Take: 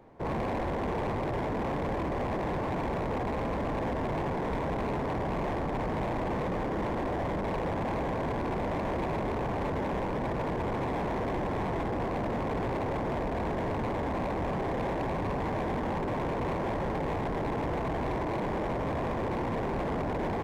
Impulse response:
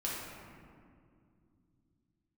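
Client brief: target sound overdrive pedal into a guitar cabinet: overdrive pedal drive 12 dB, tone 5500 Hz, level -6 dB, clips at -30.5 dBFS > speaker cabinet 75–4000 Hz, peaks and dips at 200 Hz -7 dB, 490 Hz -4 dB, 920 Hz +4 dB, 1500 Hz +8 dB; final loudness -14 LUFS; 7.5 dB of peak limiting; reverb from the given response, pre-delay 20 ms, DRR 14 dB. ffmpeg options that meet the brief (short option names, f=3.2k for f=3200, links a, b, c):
-filter_complex "[0:a]alimiter=level_in=12dB:limit=-24dB:level=0:latency=1,volume=-12dB,asplit=2[a][b];[1:a]atrim=start_sample=2205,adelay=20[c];[b][c]afir=irnorm=-1:irlink=0,volume=-18dB[d];[a][d]amix=inputs=2:normalize=0,asplit=2[e][f];[f]highpass=f=720:p=1,volume=12dB,asoftclip=type=tanh:threshold=-30.5dB[g];[e][g]amix=inputs=2:normalize=0,lowpass=f=5.5k:p=1,volume=-6dB,highpass=75,equalizer=f=200:t=q:w=4:g=-7,equalizer=f=490:t=q:w=4:g=-4,equalizer=f=920:t=q:w=4:g=4,equalizer=f=1.5k:t=q:w=4:g=8,lowpass=f=4k:w=0.5412,lowpass=f=4k:w=1.3066,volume=23dB"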